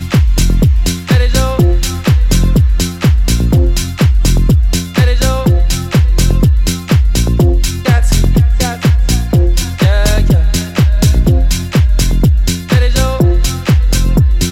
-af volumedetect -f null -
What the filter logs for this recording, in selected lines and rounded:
mean_volume: -9.3 dB
max_volume: -1.6 dB